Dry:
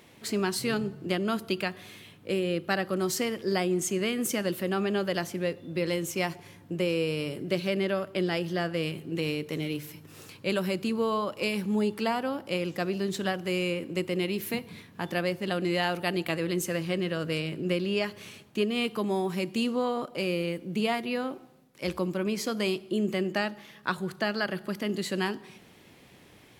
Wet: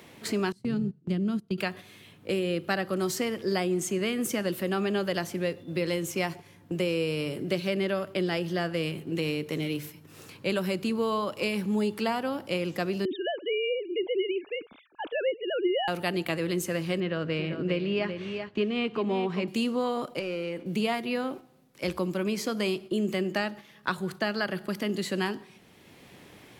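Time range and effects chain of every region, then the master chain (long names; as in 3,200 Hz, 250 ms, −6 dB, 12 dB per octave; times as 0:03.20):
0:00.52–0:01.58: drawn EQ curve 110 Hz 0 dB, 170 Hz +6 dB, 670 Hz −13 dB, 9,200 Hz −16 dB, 14,000 Hz −25 dB + noise gate −33 dBFS, range −18 dB
0:13.05–0:15.88: three sine waves on the formant tracks + parametric band 1,900 Hz −14.5 dB 0.2 octaves
0:17.00–0:19.48: low-pass filter 3,000 Hz + single-tap delay 388 ms −9.5 dB
0:20.19–0:20.66: mid-hump overdrive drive 13 dB, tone 1,400 Hz, clips at −17.5 dBFS + downward compressor 2 to 1, threshold −35 dBFS
whole clip: noise gate −41 dBFS, range −7 dB; multiband upward and downward compressor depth 40%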